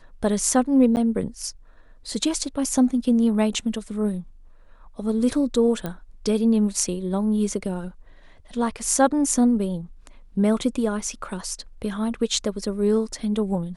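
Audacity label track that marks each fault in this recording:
0.960000	0.970000	gap 9.5 ms
5.860000	5.860000	pop -15 dBFS

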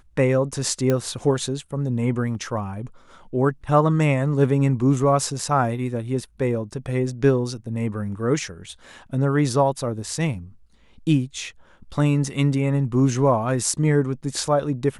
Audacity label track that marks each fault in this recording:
0.900000	0.900000	pop -9 dBFS

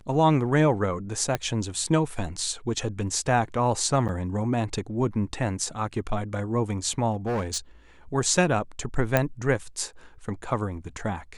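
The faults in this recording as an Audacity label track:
1.350000	1.350000	pop -11 dBFS
4.080000	4.090000	gap 8.2 ms
7.120000	7.580000	clipped -23 dBFS
9.170000	9.170000	pop -7 dBFS

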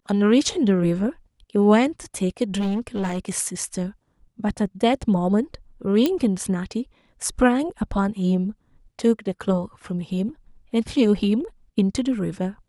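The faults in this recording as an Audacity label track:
2.590000	3.190000	clipped -20.5 dBFS
6.060000	6.060000	pop -8 dBFS

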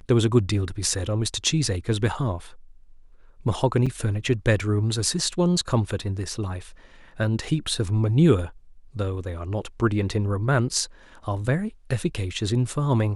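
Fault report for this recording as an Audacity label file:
3.860000	3.870000	gap 5.7 ms

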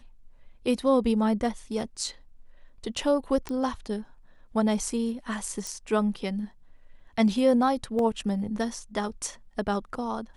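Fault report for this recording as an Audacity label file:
3.490000	3.490000	pop -19 dBFS
5.670000	5.670000	pop
7.990000	7.990000	gap 2.1 ms

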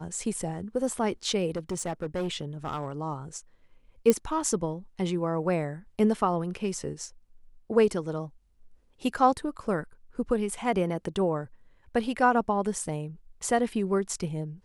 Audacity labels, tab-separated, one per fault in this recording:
1.560000	2.920000	clipped -26.5 dBFS
4.100000	4.100000	pop -9 dBFS

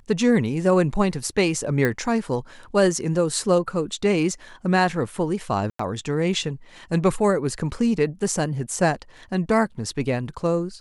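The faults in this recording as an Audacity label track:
1.850000	1.850000	pop -10 dBFS
5.700000	5.790000	gap 94 ms

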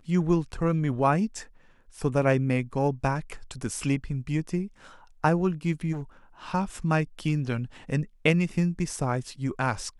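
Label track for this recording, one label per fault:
5.920000	6.020000	clipped -30.5 dBFS

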